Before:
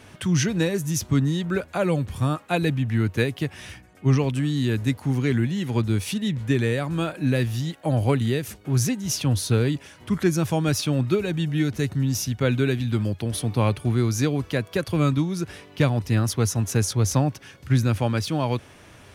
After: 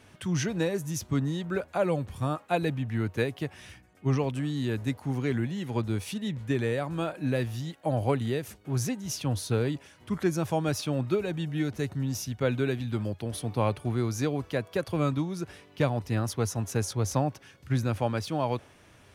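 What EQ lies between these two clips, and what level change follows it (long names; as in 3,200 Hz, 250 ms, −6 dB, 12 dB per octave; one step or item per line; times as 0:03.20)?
dynamic equaliser 710 Hz, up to +7 dB, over −37 dBFS, Q 0.76
−8.0 dB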